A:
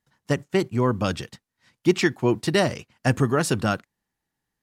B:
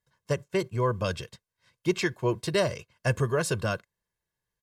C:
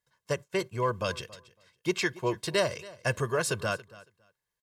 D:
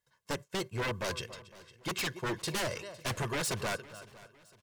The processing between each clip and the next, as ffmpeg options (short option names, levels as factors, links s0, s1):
-af "aecho=1:1:1.9:0.72,volume=0.501"
-af "lowshelf=f=360:g=-8,aecho=1:1:278|556:0.1|0.017,volume=1.12"
-af "aeval=exprs='0.0422*(abs(mod(val(0)/0.0422+3,4)-2)-1)':c=same,aecho=1:1:507|1014|1521:0.1|0.04|0.016"